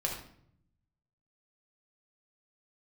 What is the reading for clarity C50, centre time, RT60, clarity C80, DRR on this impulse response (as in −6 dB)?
4.5 dB, 32 ms, 0.65 s, 8.0 dB, −1.0 dB